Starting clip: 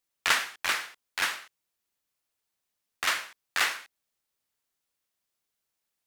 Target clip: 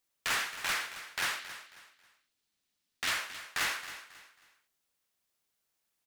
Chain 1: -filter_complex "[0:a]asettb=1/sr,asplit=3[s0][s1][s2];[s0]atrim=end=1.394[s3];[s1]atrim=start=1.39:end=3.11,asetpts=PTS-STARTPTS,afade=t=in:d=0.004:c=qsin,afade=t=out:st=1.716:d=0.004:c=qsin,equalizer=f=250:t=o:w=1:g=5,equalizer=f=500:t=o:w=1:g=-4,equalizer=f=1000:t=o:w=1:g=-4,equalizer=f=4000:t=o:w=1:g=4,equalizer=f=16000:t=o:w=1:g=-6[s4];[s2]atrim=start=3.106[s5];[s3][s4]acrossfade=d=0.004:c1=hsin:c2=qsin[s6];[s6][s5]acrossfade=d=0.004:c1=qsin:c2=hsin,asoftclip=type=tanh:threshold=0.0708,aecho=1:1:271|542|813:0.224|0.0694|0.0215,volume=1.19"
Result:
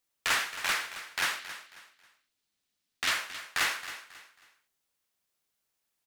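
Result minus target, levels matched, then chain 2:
saturation: distortion -4 dB
-filter_complex "[0:a]asettb=1/sr,asplit=3[s0][s1][s2];[s0]atrim=end=1.394[s3];[s1]atrim=start=1.39:end=3.11,asetpts=PTS-STARTPTS,afade=t=in:d=0.004:c=qsin,afade=t=out:st=1.716:d=0.004:c=qsin,equalizer=f=250:t=o:w=1:g=5,equalizer=f=500:t=o:w=1:g=-4,equalizer=f=1000:t=o:w=1:g=-4,equalizer=f=4000:t=o:w=1:g=4,equalizer=f=16000:t=o:w=1:g=-6[s4];[s2]atrim=start=3.106[s5];[s3][s4]acrossfade=d=0.004:c1=hsin:c2=qsin[s6];[s6][s5]acrossfade=d=0.004:c1=qsin:c2=hsin,asoftclip=type=tanh:threshold=0.0355,aecho=1:1:271|542|813:0.224|0.0694|0.0215,volume=1.19"

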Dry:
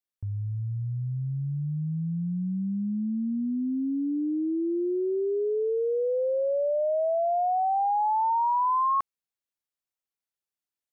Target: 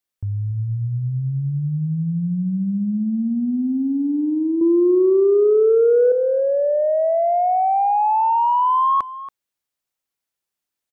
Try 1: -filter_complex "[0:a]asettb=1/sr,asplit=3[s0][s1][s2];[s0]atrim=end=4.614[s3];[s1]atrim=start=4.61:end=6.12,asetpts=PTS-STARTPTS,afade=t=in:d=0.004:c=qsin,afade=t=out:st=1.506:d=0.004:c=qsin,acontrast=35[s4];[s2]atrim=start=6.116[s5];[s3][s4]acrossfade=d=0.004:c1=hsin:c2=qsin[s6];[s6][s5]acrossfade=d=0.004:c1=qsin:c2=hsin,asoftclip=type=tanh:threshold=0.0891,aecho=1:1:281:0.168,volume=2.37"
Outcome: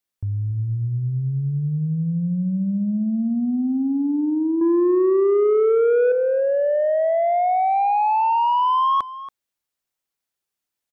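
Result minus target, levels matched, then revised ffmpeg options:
saturation: distortion +12 dB
-filter_complex "[0:a]asettb=1/sr,asplit=3[s0][s1][s2];[s0]atrim=end=4.614[s3];[s1]atrim=start=4.61:end=6.12,asetpts=PTS-STARTPTS,afade=t=in:d=0.004:c=qsin,afade=t=out:st=1.506:d=0.004:c=qsin,acontrast=35[s4];[s2]atrim=start=6.116[s5];[s3][s4]acrossfade=d=0.004:c1=hsin:c2=qsin[s6];[s6][s5]acrossfade=d=0.004:c1=qsin:c2=hsin,asoftclip=type=tanh:threshold=0.211,aecho=1:1:281:0.168,volume=2.37"

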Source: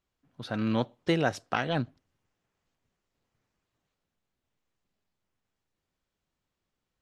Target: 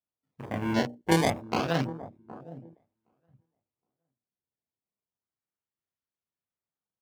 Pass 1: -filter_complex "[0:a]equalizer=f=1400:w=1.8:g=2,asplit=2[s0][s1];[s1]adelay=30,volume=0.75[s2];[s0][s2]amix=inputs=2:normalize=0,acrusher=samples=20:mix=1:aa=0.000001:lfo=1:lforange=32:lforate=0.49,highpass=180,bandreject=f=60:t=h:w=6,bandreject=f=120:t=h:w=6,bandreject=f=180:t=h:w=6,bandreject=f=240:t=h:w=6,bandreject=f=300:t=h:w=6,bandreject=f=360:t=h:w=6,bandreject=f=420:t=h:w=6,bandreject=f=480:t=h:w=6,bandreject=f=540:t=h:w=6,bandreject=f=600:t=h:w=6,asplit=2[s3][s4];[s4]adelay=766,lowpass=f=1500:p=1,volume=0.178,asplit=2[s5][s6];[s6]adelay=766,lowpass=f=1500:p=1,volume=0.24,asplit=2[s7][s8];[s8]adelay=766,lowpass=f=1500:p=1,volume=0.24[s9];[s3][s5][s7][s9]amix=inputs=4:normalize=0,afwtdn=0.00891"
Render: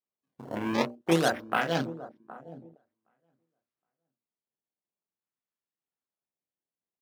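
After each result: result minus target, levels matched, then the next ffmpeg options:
decimation with a swept rate: distortion -8 dB; 125 Hz band -4.0 dB
-filter_complex "[0:a]equalizer=f=1400:w=1.8:g=2,asplit=2[s0][s1];[s1]adelay=30,volume=0.75[s2];[s0][s2]amix=inputs=2:normalize=0,acrusher=samples=20:mix=1:aa=0.000001:lfo=1:lforange=32:lforate=0.29,highpass=180,bandreject=f=60:t=h:w=6,bandreject=f=120:t=h:w=6,bandreject=f=180:t=h:w=6,bandreject=f=240:t=h:w=6,bandreject=f=300:t=h:w=6,bandreject=f=360:t=h:w=6,bandreject=f=420:t=h:w=6,bandreject=f=480:t=h:w=6,bandreject=f=540:t=h:w=6,bandreject=f=600:t=h:w=6,asplit=2[s3][s4];[s4]adelay=766,lowpass=f=1500:p=1,volume=0.178,asplit=2[s5][s6];[s6]adelay=766,lowpass=f=1500:p=1,volume=0.24,asplit=2[s7][s8];[s8]adelay=766,lowpass=f=1500:p=1,volume=0.24[s9];[s3][s5][s7][s9]amix=inputs=4:normalize=0,afwtdn=0.00891"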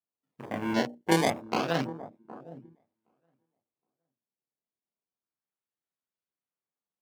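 125 Hz band -4.0 dB
-filter_complex "[0:a]equalizer=f=1400:w=1.8:g=2,asplit=2[s0][s1];[s1]adelay=30,volume=0.75[s2];[s0][s2]amix=inputs=2:normalize=0,acrusher=samples=20:mix=1:aa=0.000001:lfo=1:lforange=32:lforate=0.29,highpass=78,bandreject=f=60:t=h:w=6,bandreject=f=120:t=h:w=6,bandreject=f=180:t=h:w=6,bandreject=f=240:t=h:w=6,bandreject=f=300:t=h:w=6,bandreject=f=360:t=h:w=6,bandreject=f=420:t=h:w=6,bandreject=f=480:t=h:w=6,bandreject=f=540:t=h:w=6,bandreject=f=600:t=h:w=6,asplit=2[s3][s4];[s4]adelay=766,lowpass=f=1500:p=1,volume=0.178,asplit=2[s5][s6];[s6]adelay=766,lowpass=f=1500:p=1,volume=0.24,asplit=2[s7][s8];[s8]adelay=766,lowpass=f=1500:p=1,volume=0.24[s9];[s3][s5][s7][s9]amix=inputs=4:normalize=0,afwtdn=0.00891"

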